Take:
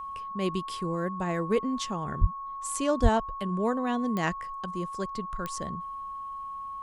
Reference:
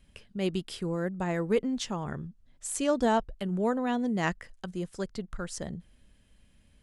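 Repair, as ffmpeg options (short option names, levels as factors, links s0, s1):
-filter_complex "[0:a]adeclick=t=4,bandreject=f=1100:w=30,asplit=3[s0][s1][s2];[s0]afade=t=out:st=2.2:d=0.02[s3];[s1]highpass=f=140:w=0.5412,highpass=f=140:w=1.3066,afade=t=in:st=2.2:d=0.02,afade=t=out:st=2.32:d=0.02[s4];[s2]afade=t=in:st=2.32:d=0.02[s5];[s3][s4][s5]amix=inputs=3:normalize=0,asplit=3[s6][s7][s8];[s6]afade=t=out:st=3.02:d=0.02[s9];[s7]highpass=f=140:w=0.5412,highpass=f=140:w=1.3066,afade=t=in:st=3.02:d=0.02,afade=t=out:st=3.14:d=0.02[s10];[s8]afade=t=in:st=3.14:d=0.02[s11];[s9][s10][s11]amix=inputs=3:normalize=0"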